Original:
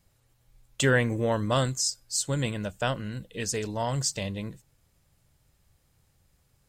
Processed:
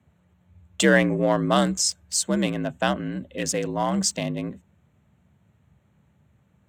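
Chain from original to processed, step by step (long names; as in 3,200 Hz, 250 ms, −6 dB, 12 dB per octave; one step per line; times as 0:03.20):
adaptive Wiener filter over 9 samples
frequency shifter +59 Hz
level +5 dB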